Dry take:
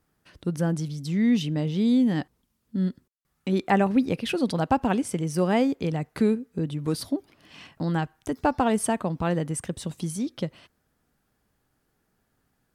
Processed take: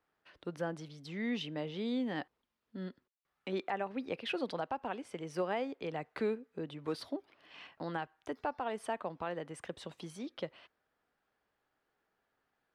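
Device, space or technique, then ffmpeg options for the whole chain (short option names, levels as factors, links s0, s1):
DJ mixer with the lows and highs turned down: -filter_complex "[0:a]acrossover=split=380 4200:gain=0.158 1 0.126[s0][s1][s2];[s0][s1][s2]amix=inputs=3:normalize=0,alimiter=limit=0.0891:level=0:latency=1:release=429,volume=0.631"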